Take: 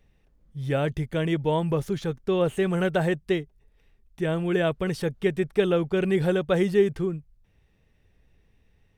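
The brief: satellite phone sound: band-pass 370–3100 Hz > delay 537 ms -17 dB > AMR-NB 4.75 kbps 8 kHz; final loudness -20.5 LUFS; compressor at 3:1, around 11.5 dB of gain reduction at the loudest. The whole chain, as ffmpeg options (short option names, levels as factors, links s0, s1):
-af "acompressor=threshold=0.0282:ratio=3,highpass=370,lowpass=3100,aecho=1:1:537:0.141,volume=7.5" -ar 8000 -c:a libopencore_amrnb -b:a 4750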